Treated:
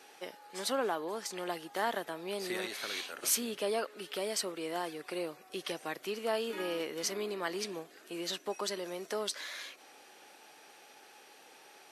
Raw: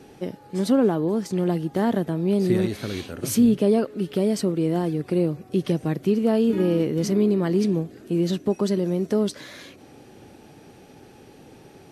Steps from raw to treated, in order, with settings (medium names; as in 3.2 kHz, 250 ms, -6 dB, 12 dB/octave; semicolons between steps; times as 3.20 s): high-pass 920 Hz 12 dB/octave